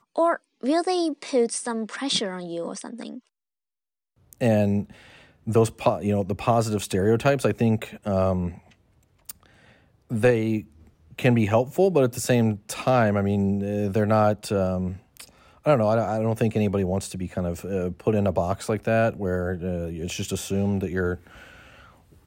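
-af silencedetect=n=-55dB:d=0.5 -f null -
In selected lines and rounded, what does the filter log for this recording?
silence_start: 3.27
silence_end: 4.18 | silence_duration: 0.91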